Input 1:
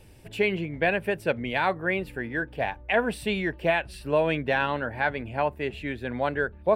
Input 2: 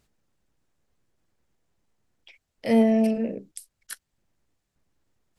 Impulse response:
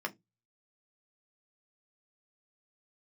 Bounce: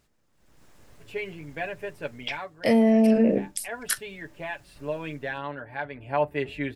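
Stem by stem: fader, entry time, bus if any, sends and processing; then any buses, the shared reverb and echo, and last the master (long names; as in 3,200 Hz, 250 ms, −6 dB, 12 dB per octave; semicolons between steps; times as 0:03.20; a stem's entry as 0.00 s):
0:05.90 −18 dB → 0:06.24 −9 dB, 0.75 s, send −11.5 dB, comb filter 7 ms, depth 67%
0.0 dB, 0.00 s, send −11 dB, automatic gain control gain up to 13.5 dB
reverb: on, RT60 0.20 s, pre-delay 3 ms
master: automatic gain control gain up to 6 dB; brickwall limiter −12 dBFS, peak gain reduction 11 dB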